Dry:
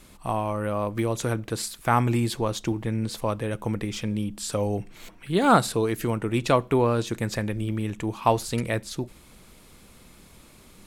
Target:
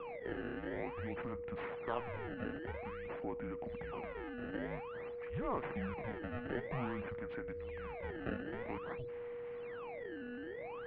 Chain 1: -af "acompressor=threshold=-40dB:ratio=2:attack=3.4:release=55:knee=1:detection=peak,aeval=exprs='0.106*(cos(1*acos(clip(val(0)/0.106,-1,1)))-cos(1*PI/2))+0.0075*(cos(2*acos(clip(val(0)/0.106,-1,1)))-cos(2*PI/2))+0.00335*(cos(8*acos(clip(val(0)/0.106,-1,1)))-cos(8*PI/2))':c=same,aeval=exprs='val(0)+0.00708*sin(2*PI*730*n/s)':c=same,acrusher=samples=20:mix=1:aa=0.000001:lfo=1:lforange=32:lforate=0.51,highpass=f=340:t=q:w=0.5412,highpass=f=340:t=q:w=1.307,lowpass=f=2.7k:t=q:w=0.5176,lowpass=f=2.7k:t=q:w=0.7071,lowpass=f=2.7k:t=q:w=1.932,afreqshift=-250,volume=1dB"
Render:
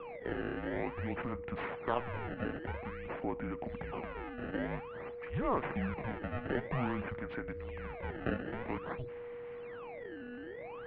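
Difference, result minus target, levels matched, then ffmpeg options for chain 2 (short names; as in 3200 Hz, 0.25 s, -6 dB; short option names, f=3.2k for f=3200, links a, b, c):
compressor: peak gain reduction -5.5 dB
-af "acompressor=threshold=-51dB:ratio=2:attack=3.4:release=55:knee=1:detection=peak,aeval=exprs='0.106*(cos(1*acos(clip(val(0)/0.106,-1,1)))-cos(1*PI/2))+0.0075*(cos(2*acos(clip(val(0)/0.106,-1,1)))-cos(2*PI/2))+0.00335*(cos(8*acos(clip(val(0)/0.106,-1,1)))-cos(8*PI/2))':c=same,aeval=exprs='val(0)+0.00708*sin(2*PI*730*n/s)':c=same,acrusher=samples=20:mix=1:aa=0.000001:lfo=1:lforange=32:lforate=0.51,highpass=f=340:t=q:w=0.5412,highpass=f=340:t=q:w=1.307,lowpass=f=2.7k:t=q:w=0.5176,lowpass=f=2.7k:t=q:w=0.7071,lowpass=f=2.7k:t=q:w=1.932,afreqshift=-250,volume=1dB"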